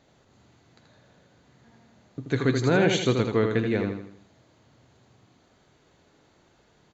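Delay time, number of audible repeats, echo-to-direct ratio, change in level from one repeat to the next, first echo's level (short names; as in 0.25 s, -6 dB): 81 ms, 5, -4.5 dB, -7.5 dB, -5.5 dB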